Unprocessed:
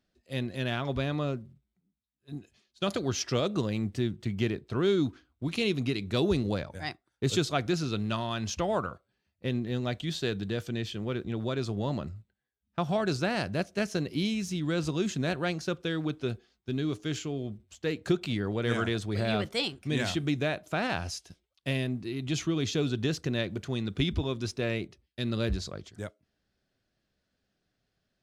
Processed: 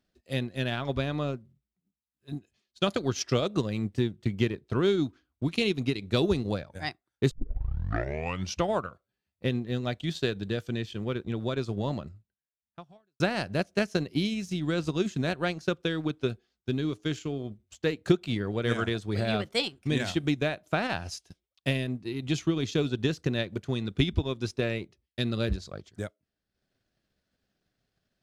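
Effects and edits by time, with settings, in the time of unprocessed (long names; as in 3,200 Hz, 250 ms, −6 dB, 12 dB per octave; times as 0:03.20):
0:07.31: tape start 1.30 s
0:12.02–0:13.20: fade out quadratic
whole clip: transient designer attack +5 dB, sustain −8 dB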